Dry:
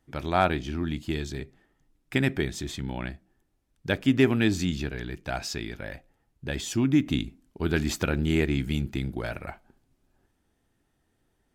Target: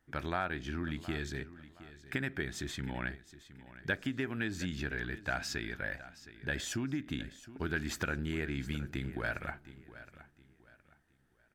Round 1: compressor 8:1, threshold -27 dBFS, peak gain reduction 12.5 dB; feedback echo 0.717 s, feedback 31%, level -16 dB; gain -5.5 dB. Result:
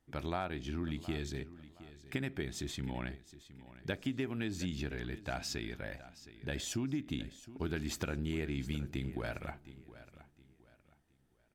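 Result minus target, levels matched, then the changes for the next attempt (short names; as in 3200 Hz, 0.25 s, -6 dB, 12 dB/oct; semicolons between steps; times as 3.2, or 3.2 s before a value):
2000 Hz band -6.0 dB
add after compressor: bell 1600 Hz +10.5 dB 0.66 oct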